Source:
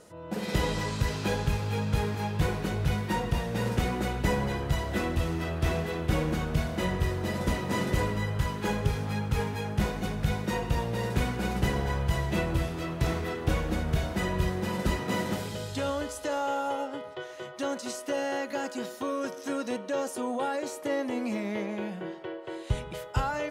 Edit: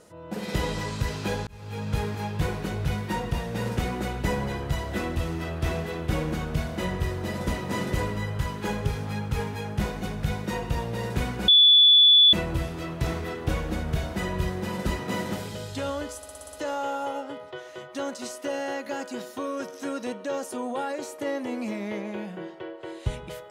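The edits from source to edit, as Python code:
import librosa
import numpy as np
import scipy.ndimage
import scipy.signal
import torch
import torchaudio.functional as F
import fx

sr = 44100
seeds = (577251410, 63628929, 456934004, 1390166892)

y = fx.edit(x, sr, fx.fade_in_span(start_s=1.47, length_s=0.47),
    fx.bleep(start_s=11.48, length_s=0.85, hz=3450.0, db=-12.0),
    fx.stutter(start_s=16.17, slice_s=0.06, count=7), tone=tone)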